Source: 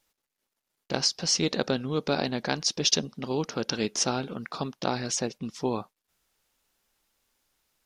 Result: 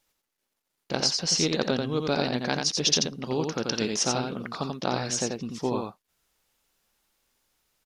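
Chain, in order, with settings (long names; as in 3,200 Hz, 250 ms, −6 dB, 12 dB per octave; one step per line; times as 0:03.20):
single-tap delay 87 ms −4 dB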